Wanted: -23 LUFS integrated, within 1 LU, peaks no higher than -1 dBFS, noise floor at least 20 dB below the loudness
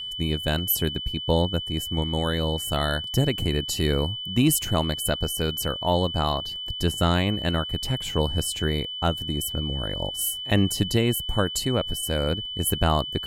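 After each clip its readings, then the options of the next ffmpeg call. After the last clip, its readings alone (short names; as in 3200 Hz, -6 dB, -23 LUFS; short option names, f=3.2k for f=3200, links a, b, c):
steady tone 3000 Hz; tone level -31 dBFS; loudness -25.0 LUFS; peak -6.0 dBFS; loudness target -23.0 LUFS
-> -af "bandreject=f=3k:w=30"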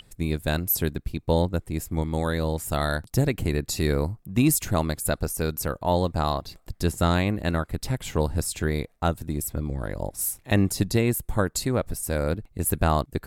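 steady tone none; loudness -26.0 LUFS; peak -6.5 dBFS; loudness target -23.0 LUFS
-> -af "volume=3dB"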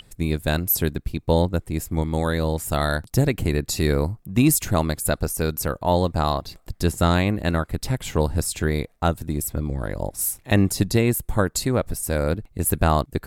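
loudness -23.0 LUFS; peak -3.5 dBFS; noise floor -57 dBFS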